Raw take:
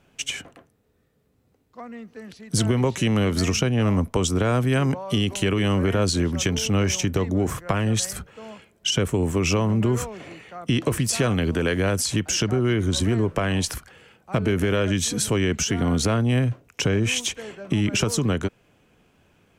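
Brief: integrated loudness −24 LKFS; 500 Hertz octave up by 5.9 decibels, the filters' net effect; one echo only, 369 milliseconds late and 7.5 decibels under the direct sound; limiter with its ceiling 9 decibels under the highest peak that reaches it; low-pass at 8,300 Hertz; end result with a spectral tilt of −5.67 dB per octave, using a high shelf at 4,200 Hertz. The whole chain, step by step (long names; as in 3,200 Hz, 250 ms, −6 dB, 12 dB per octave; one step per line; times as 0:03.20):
low-pass filter 8,300 Hz
parametric band 500 Hz +7.5 dB
high-shelf EQ 4,200 Hz −6 dB
brickwall limiter −13 dBFS
single-tap delay 369 ms −7.5 dB
level −1 dB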